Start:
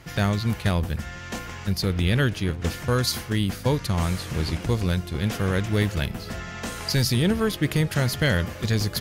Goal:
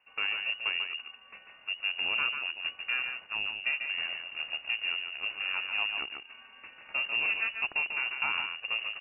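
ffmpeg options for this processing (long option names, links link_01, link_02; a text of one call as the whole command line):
ffmpeg -i in.wav -af "aeval=exprs='0.299*(cos(1*acos(clip(val(0)/0.299,-1,1)))-cos(1*PI/2))+0.0211*(cos(3*acos(clip(val(0)/0.299,-1,1)))-cos(3*PI/2))+0.0237*(cos(7*acos(clip(val(0)/0.299,-1,1)))-cos(7*PI/2))':channel_layout=same,aecho=1:1:144:0.501,lowpass=frequency=2500:width_type=q:width=0.5098,lowpass=frequency=2500:width_type=q:width=0.6013,lowpass=frequency=2500:width_type=q:width=0.9,lowpass=frequency=2500:width_type=q:width=2.563,afreqshift=-2900,volume=-8.5dB" out.wav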